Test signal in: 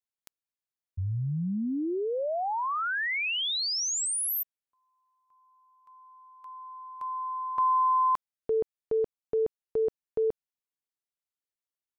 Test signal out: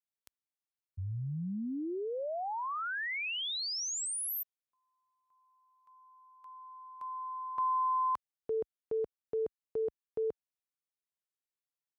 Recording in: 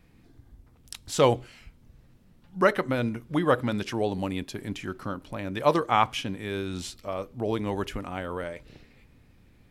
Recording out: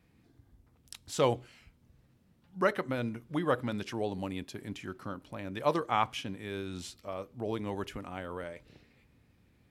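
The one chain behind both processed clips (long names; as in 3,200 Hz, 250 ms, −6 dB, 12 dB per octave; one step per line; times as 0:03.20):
high-pass filter 55 Hz 12 dB per octave
level −6.5 dB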